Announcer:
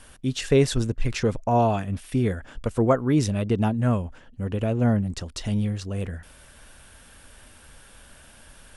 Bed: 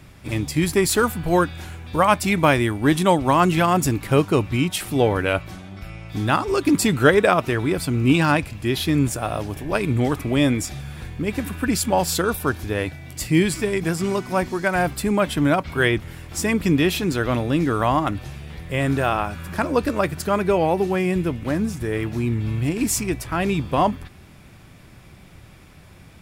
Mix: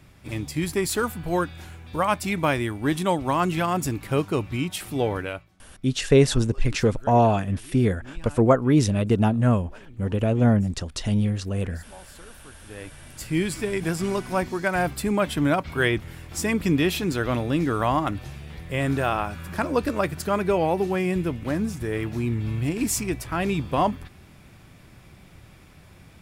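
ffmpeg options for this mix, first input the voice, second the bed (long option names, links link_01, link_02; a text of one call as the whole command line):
ffmpeg -i stem1.wav -i stem2.wav -filter_complex "[0:a]adelay=5600,volume=2.5dB[link_01];[1:a]volume=18dB,afade=type=out:start_time=5.15:duration=0.34:silence=0.0891251,afade=type=in:start_time=12.52:duration=1.36:silence=0.0630957[link_02];[link_01][link_02]amix=inputs=2:normalize=0" out.wav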